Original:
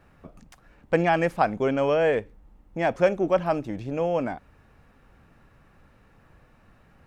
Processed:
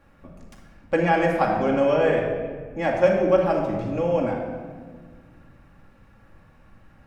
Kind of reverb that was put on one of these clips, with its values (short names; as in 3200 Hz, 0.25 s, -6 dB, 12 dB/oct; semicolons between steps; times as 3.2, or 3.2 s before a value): shoebox room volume 1900 m³, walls mixed, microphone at 2.3 m; gain -2 dB